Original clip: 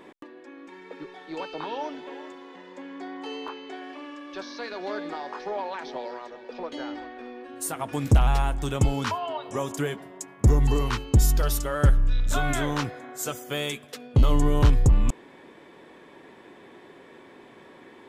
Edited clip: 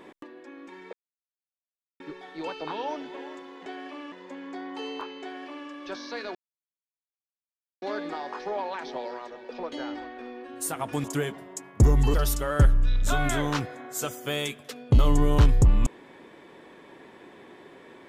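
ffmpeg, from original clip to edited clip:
-filter_complex "[0:a]asplit=7[a][b][c][d][e][f][g];[a]atrim=end=0.93,asetpts=PTS-STARTPTS,afade=t=out:st=0.926:d=0.004:c=hsin,apad=pad_dur=1.07[h];[b]atrim=start=0.93:end=2.592,asetpts=PTS-STARTPTS,afade=t=in:d=0.004:c=hsin[i];[c]atrim=start=3.698:end=4.162[j];[d]atrim=start=2.588:end=4.82,asetpts=PTS-STARTPTS,afade=t=out:st=2.228:d=0.004:c=hsin,apad=pad_dur=1.47[k];[e]atrim=start=4.82:end=8.042,asetpts=PTS-STARTPTS,afade=t=in:d=0.004:c=hsin[l];[f]atrim=start=9.678:end=10.782[m];[g]atrim=start=11.378[n];[h][i]concat=n=2:v=0:a=1[o];[o][j]acrossfade=d=0.004:c1=hsin:c2=hsin[p];[k][l]concat=n=2:v=0:a=1[q];[p][q]acrossfade=d=0.004:c1=hsin:c2=hsin[r];[r][m]acrossfade=d=0.004:c1=hsin:c2=hsin[s];[s][n]acrossfade=d=0.004:c1=hsin:c2=hsin"

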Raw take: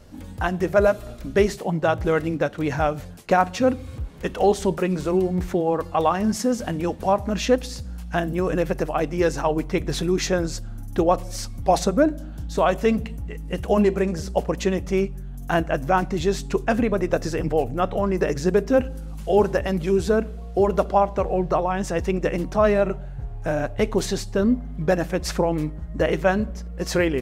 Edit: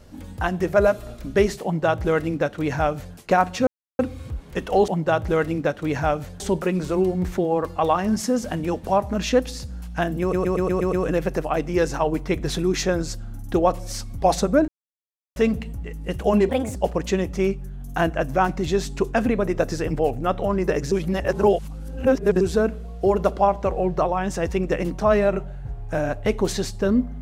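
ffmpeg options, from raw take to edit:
-filter_complex "[0:a]asplit=16[a][b][c][d][e][f][g][h][i][j][k][l][m][n][o][p];[a]atrim=end=3.67,asetpts=PTS-STARTPTS,afade=t=out:st=3.666:d=0.004:c=hsin,apad=pad_dur=0.32[q];[b]atrim=start=3.67:end=4.562,asetpts=PTS-STARTPTS,afade=t=in:d=0.004:c=hsin[r];[c]atrim=start=1.638:end=3.162[s];[d]atrim=start=4.558:end=8.492[t];[e]atrim=start=8.368:end=8.492[u];[f]atrim=start=8.368:end=8.492[v];[g]atrim=start=8.368:end=8.492[w];[h]atrim=start=8.368:end=8.492[x];[i]atrim=start=8.368:end=8.492[y];[j]atrim=start=8.368:end=12.12,asetpts=PTS-STARTPTS,afade=t=out:st=3.748:d=0.004:c=hsin[z];[k]atrim=start=12.12:end=12.8,asetpts=PTS-STARTPTS,volume=0[aa];[l]atrim=start=12.8:end=13.934,asetpts=PTS-STARTPTS,afade=t=in:d=0.004:c=hsin[ab];[m]atrim=start=13.93:end=14.29,asetpts=PTS-STARTPTS,asetrate=59535,aresample=44100[ac];[n]atrim=start=14.286:end=18.452[ad];[o]atrim=start=18.448:end=19.942,asetpts=PTS-STARTPTS,areverse[ae];[p]atrim=start=19.938[af];[q][r]concat=n=2:v=0:a=1[ag];[ag][s]acrossfade=d=0.004:c1=hsin:c2=hsin[ah];[ah][t]acrossfade=d=0.004:c1=hsin:c2=hsin[ai];[ai][u]acrossfade=d=0.004:c1=hsin:c2=hsin[aj];[aj][v]acrossfade=d=0.004:c1=hsin:c2=hsin[ak];[ak][w]acrossfade=d=0.004:c1=hsin:c2=hsin[al];[al][x]acrossfade=d=0.004:c1=hsin:c2=hsin[am];[am][y]acrossfade=d=0.004:c1=hsin:c2=hsin[an];[z][aa][ab]concat=n=3:v=0:a=1[ao];[an][ao]acrossfade=d=0.004:c1=hsin:c2=hsin[ap];[ap][ac]acrossfade=d=0.004:c1=hsin:c2=hsin[aq];[aq][ad]acrossfade=d=0.004:c1=hsin:c2=hsin[ar];[ar][ae]acrossfade=d=0.004:c1=hsin:c2=hsin[as];[as][af]acrossfade=d=0.004:c1=hsin:c2=hsin"

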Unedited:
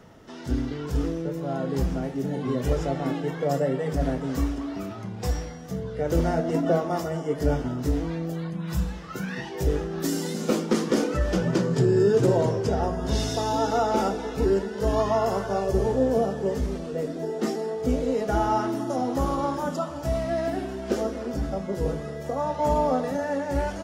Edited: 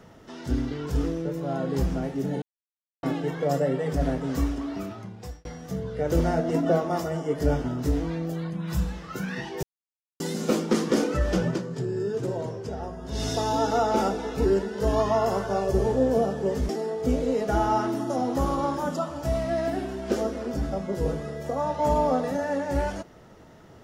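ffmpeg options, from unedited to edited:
-filter_complex "[0:a]asplit=9[a][b][c][d][e][f][g][h][i];[a]atrim=end=2.42,asetpts=PTS-STARTPTS,afade=t=out:st=2.416:d=0.004:c=hsin[j];[b]atrim=start=2.42:end=3.03,asetpts=PTS-STARTPTS,volume=0[k];[c]atrim=start=3.03:end=5.45,asetpts=PTS-STARTPTS,afade=t=in:d=0.004:c=hsin,afade=t=out:st=1.78:d=0.64[l];[d]atrim=start=5.45:end=9.63,asetpts=PTS-STARTPTS,afade=t=in:d=0.004:c=hsin,afade=t=out:st=4.176:d=0.004:c=hsin[m];[e]atrim=start=9.63:end=10.2,asetpts=PTS-STARTPTS,volume=0[n];[f]atrim=start=10.2:end=11.61,asetpts=PTS-STARTPTS,afade=t=in:d=0.004:c=hsin,afade=t=out:st=1.25:d=0.16:silence=0.354813[o];[g]atrim=start=11.61:end=13.12,asetpts=PTS-STARTPTS,volume=-9dB[p];[h]atrim=start=13.12:end=16.692,asetpts=PTS-STARTPTS,afade=t=in:d=0.16:silence=0.354813[q];[i]atrim=start=17.488[r];[j][k][l][m][n][o][p][q]concat=n=8:v=0:a=1[s];[s][r]acrossfade=d=0.004:c1=hsin:c2=hsin"

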